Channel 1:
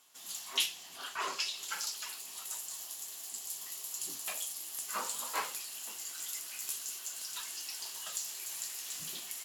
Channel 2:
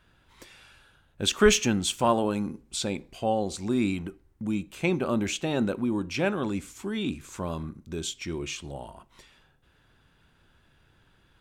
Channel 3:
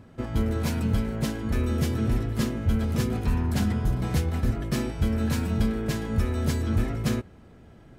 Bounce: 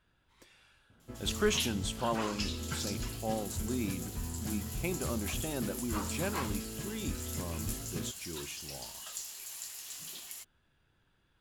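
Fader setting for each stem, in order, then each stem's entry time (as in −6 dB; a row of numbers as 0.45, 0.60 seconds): −3.0, −10.0, −14.5 decibels; 1.00, 0.00, 0.90 seconds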